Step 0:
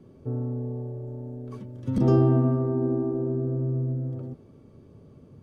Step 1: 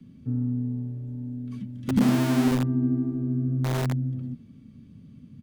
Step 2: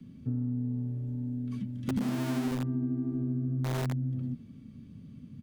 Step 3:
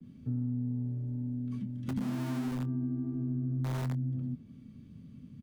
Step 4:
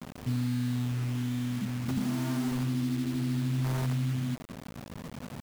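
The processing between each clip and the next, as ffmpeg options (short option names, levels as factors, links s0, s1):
-filter_complex "[0:a]firequalizer=gain_entry='entry(100,0);entry(230,9);entry(370,-15);entry(840,-14);entry(1900,2);entry(3300,5);entry(5300,0)':delay=0.05:min_phase=1,acrossover=split=140|430|990[s0][s1][s2][s3];[s0]aeval=exprs='(mod(21.1*val(0)+1,2)-1)/21.1':c=same[s4];[s4][s1][s2][s3]amix=inputs=4:normalize=0"
-af "acompressor=threshold=0.0398:ratio=6"
-filter_complex "[0:a]asplit=2[s0][s1];[s1]adelay=24,volume=0.224[s2];[s0][s2]amix=inputs=2:normalize=0,acrossover=split=300|640|2300[s3][s4][s5][s6];[s4]alimiter=level_in=7.5:limit=0.0631:level=0:latency=1,volume=0.133[s7];[s3][s7][s5][s6]amix=inputs=4:normalize=0,adynamicequalizer=threshold=0.002:dfrequency=1500:dqfactor=0.7:tfrequency=1500:tqfactor=0.7:attack=5:release=100:ratio=0.375:range=2:mode=cutabove:tftype=highshelf,volume=0.75"
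-filter_complex "[0:a]bandreject=f=550:w=13,asplit=2[s0][s1];[s1]alimiter=level_in=3.16:limit=0.0631:level=0:latency=1:release=133,volume=0.316,volume=1[s2];[s0][s2]amix=inputs=2:normalize=0,acrusher=bits=6:mix=0:aa=0.000001"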